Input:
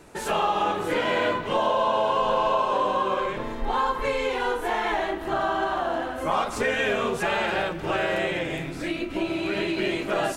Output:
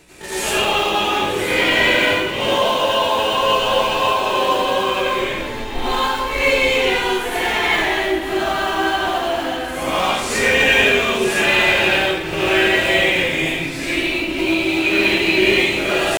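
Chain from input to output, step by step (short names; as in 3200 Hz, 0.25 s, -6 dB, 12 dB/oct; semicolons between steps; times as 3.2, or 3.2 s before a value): resonant high shelf 1700 Hz +8 dB, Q 1.5; tempo 0.64×; in parallel at -10.5 dB: decimation with a swept rate 21×, swing 60% 3.5 Hz; on the sum: plate-style reverb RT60 0.73 s, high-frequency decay 0.9×, pre-delay 75 ms, DRR -8.5 dB; gain -3.5 dB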